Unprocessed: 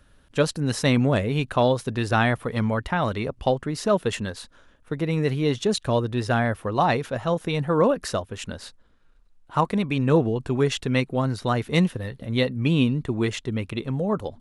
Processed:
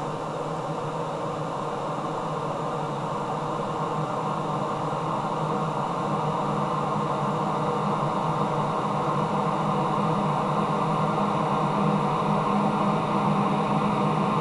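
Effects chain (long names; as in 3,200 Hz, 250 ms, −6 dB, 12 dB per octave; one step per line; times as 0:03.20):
delay that swaps between a low-pass and a high-pass 475 ms, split 830 Hz, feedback 75%, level −8.5 dB
extreme stretch with random phases 45×, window 1.00 s, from 0:09.32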